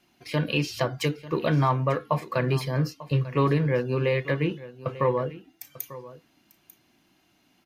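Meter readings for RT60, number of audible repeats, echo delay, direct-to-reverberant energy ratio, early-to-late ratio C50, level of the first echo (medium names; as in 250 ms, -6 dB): no reverb, 1, 894 ms, no reverb, no reverb, -17.0 dB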